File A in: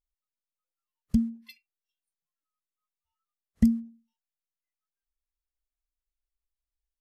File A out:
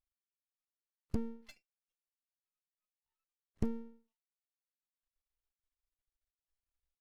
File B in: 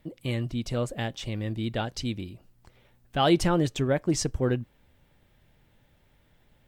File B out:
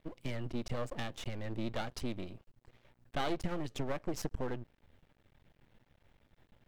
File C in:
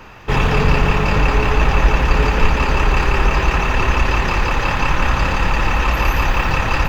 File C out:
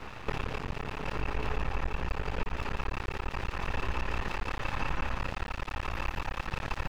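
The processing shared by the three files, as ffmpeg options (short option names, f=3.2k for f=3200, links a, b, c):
-af "highshelf=f=5.8k:g=-11.5,acompressor=threshold=-28dB:ratio=5,aeval=exprs='max(val(0),0)':c=same"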